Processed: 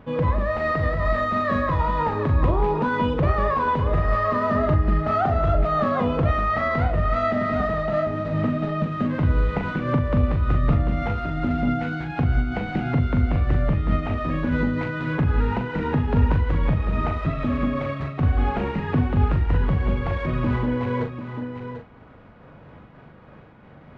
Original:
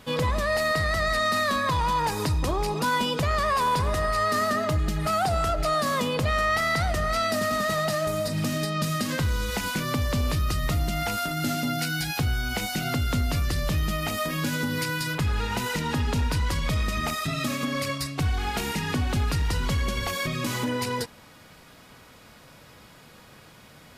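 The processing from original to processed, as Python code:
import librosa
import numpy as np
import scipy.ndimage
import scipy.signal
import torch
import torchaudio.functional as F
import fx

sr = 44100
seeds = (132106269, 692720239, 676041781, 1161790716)

y = scipy.ndimage.median_filter(x, 9, mode='constant')
y = fx.spacing_loss(y, sr, db_at_10k=41)
y = fx.doubler(y, sr, ms=41.0, db=-6.0)
y = y + 10.0 ** (-9.0 / 20.0) * np.pad(y, (int(743 * sr / 1000.0), 0))[:len(y)]
y = fx.am_noise(y, sr, seeds[0], hz=5.7, depth_pct=55)
y = y * 10.0 ** (7.5 / 20.0)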